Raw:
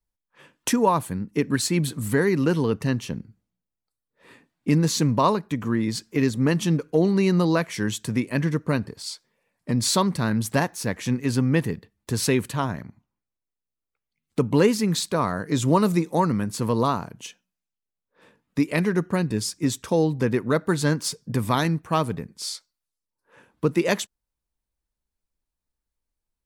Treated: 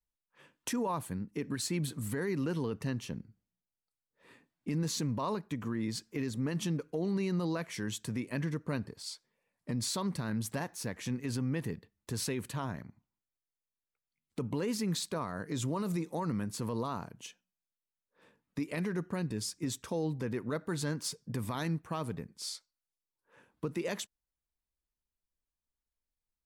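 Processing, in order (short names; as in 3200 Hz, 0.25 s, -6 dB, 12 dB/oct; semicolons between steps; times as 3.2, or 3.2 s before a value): limiter -17 dBFS, peak gain reduction 10 dB; gain -8.5 dB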